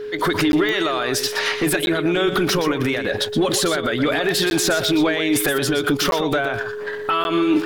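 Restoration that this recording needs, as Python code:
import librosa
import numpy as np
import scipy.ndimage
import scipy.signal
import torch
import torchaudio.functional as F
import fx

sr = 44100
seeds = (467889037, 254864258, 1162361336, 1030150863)

y = fx.fix_declick_ar(x, sr, threshold=10.0)
y = fx.notch(y, sr, hz=420.0, q=30.0)
y = fx.fix_interpolate(y, sr, at_s=(0.52, 1.86, 4.5, 6.11, 7.24), length_ms=11.0)
y = fx.fix_echo_inverse(y, sr, delay_ms=121, level_db=-10.0)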